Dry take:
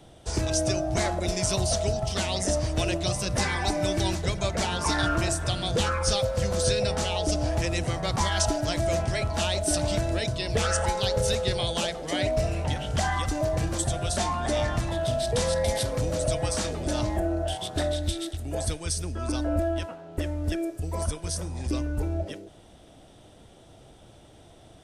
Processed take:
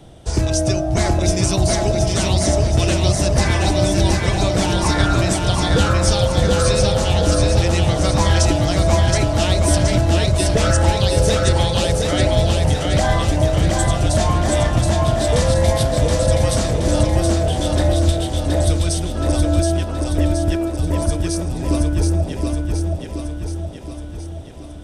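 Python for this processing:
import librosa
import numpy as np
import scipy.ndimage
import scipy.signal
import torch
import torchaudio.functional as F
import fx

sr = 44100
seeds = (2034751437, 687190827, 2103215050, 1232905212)

y = fx.low_shelf(x, sr, hz=350.0, db=6.0)
y = fx.echo_feedback(y, sr, ms=723, feedback_pct=56, wet_db=-3.0)
y = y * 10.0 ** (4.5 / 20.0)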